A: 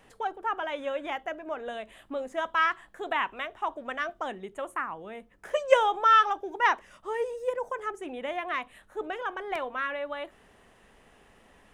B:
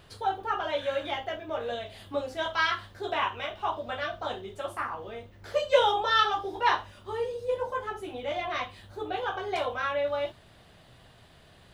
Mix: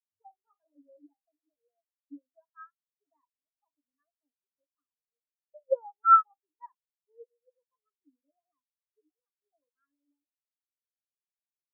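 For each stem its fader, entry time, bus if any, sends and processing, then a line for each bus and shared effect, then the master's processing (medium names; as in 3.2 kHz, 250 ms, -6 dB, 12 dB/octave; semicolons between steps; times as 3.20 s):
-4.0 dB, 0.00 s, no send, none
+2.0 dB, 0.00 s, no send, tilt EQ -2 dB/octave; saturation -25.5 dBFS, distortion -9 dB; auto duck -13 dB, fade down 1.70 s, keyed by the first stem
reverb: none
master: peaking EQ 280 Hz +14 dB 0.23 oct; spectral contrast expander 4:1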